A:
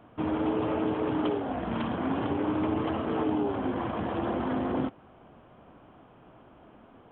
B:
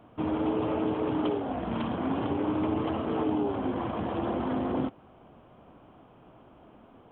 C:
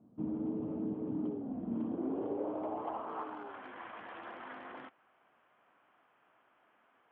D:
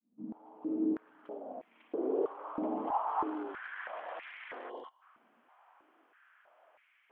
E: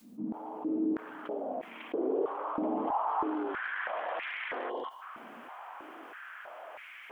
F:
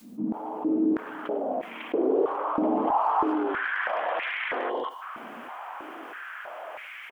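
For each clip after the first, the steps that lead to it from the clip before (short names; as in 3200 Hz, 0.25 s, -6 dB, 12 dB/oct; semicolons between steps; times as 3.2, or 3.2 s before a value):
bell 1700 Hz -4 dB 0.73 oct
hard clip -21.5 dBFS, distortion -26 dB; band-pass sweep 210 Hz -> 1800 Hz, 1.54–3.64; gain -1 dB
opening faded in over 1.26 s; spectral gain 4.7–5.02, 1100–2800 Hz -20 dB; stepped high-pass 3.1 Hz 230–2200 Hz
fast leveller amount 50%
speakerphone echo 0.1 s, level -18 dB; gain +7 dB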